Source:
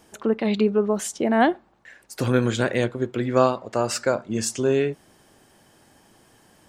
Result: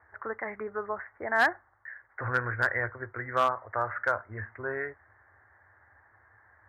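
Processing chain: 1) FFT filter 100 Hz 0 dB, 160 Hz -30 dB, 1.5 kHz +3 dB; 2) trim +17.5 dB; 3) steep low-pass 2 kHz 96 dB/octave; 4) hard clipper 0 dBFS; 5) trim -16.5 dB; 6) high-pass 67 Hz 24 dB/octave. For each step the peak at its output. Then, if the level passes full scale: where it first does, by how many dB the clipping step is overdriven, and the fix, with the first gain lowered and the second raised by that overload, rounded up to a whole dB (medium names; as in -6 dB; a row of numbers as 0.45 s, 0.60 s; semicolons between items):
-8.5 dBFS, +9.0 dBFS, +6.5 dBFS, 0.0 dBFS, -16.5 dBFS, -14.5 dBFS; step 2, 6.5 dB; step 2 +10.5 dB, step 5 -9.5 dB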